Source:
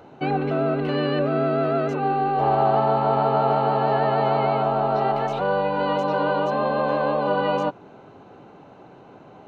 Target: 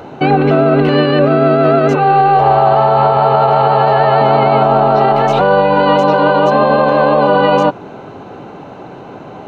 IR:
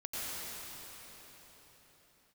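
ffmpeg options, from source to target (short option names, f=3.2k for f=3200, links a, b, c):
-filter_complex "[0:a]asettb=1/sr,asplit=3[a][b][c];[a]atrim=end=1.954[d];[b]atrim=start=1.95:end=4.21,asetpts=PTS-STARTPTS,afade=t=in:d=0.004:c=qsin,afade=t=out:st=2.256:d=0.004:c=qsin,equalizer=f=260:w=2.4:g=-15[e];[c]atrim=start=4.206[f];[d][e]acrossfade=d=0.004:c1=hsin:c2=qsin[g];[g][f]acrossfade=d=0.004:c1=qsin:c2=hsin,alimiter=level_in=16dB:limit=-1dB:release=50:level=0:latency=1,volume=-1dB"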